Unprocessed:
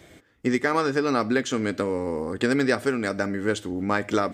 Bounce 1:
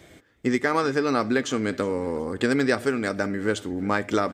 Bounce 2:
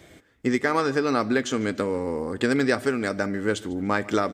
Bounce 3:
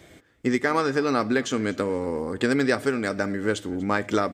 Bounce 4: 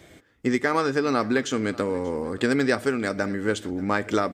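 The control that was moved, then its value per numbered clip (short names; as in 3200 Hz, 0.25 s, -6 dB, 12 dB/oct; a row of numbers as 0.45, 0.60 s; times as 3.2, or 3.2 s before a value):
feedback echo, time: 0.366, 0.147, 0.24, 0.586 s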